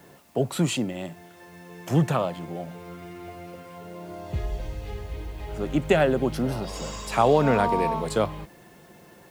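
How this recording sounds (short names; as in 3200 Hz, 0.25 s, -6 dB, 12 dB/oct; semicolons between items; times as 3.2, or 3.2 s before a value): a quantiser's noise floor 10-bit, dither triangular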